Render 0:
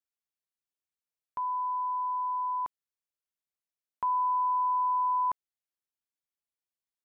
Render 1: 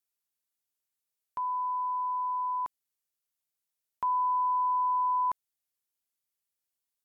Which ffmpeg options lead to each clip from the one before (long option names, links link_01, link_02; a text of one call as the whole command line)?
ffmpeg -i in.wav -af "aemphasis=mode=production:type=cd" out.wav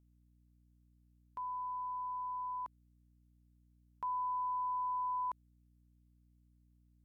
ffmpeg -i in.wav -af "aeval=exprs='val(0)+0.00126*(sin(2*PI*60*n/s)+sin(2*PI*2*60*n/s)/2+sin(2*PI*3*60*n/s)/3+sin(2*PI*4*60*n/s)/4+sin(2*PI*5*60*n/s)/5)':channel_layout=same,volume=-9dB" out.wav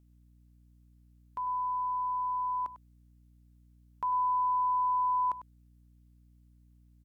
ffmpeg -i in.wav -af "aecho=1:1:99:0.2,volume=6.5dB" out.wav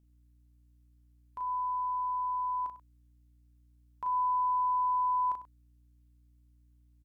ffmpeg -i in.wav -filter_complex "[0:a]asplit=2[link_01][link_02];[link_02]adelay=36,volume=-4.5dB[link_03];[link_01][link_03]amix=inputs=2:normalize=0,volume=-4.5dB" out.wav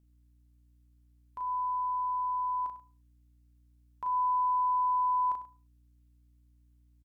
ffmpeg -i in.wav -af "aecho=1:1:71|142|213:0.0668|0.0321|0.0154" out.wav